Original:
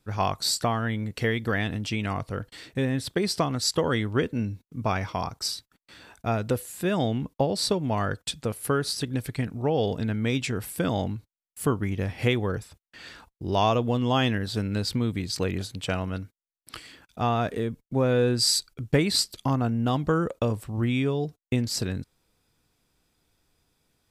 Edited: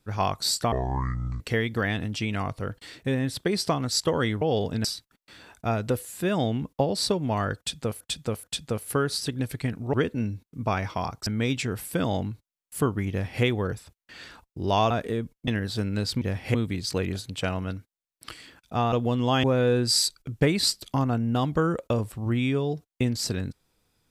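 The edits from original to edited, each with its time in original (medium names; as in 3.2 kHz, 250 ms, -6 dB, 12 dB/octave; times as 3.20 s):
0.72–1.11 s: speed 57%
4.12–5.45 s: swap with 9.68–10.11 s
8.18–8.61 s: loop, 3 plays
11.95–12.28 s: copy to 15.00 s
13.75–14.26 s: swap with 17.38–17.95 s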